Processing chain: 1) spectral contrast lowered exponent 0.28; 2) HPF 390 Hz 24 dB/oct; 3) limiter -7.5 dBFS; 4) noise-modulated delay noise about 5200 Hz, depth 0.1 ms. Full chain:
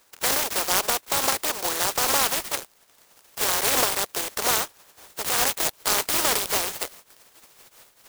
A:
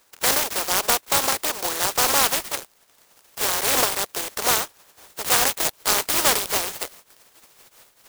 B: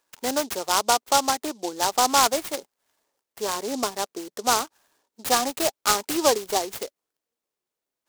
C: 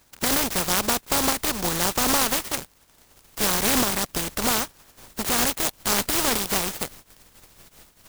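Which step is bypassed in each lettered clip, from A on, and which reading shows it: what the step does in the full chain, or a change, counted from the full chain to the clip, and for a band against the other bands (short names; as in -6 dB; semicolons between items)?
3, crest factor change +3.5 dB; 1, 250 Hz band +8.0 dB; 2, 250 Hz band +10.0 dB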